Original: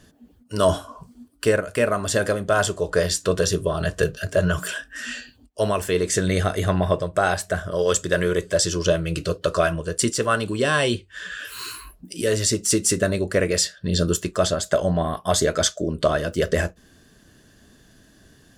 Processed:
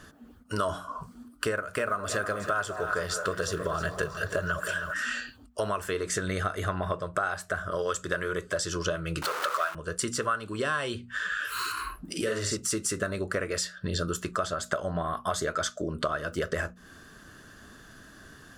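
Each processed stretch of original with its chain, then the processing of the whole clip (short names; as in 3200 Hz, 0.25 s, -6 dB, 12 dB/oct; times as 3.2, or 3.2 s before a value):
1.57–4.94 block floating point 7-bit + delay with a stepping band-pass 0.201 s, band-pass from 680 Hz, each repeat 0.7 oct, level -9.5 dB + lo-fi delay 0.317 s, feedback 35%, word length 7-bit, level -13 dB
9.22–9.75 zero-crossing step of -20 dBFS + HPF 690 Hz
11.72–12.57 high shelf 7700 Hz -8 dB + doubler 50 ms -2.5 dB
whole clip: bell 1300 Hz +13 dB 0.74 oct; notches 60/120/180/240 Hz; compressor 4:1, threshold -30 dBFS; gain +1 dB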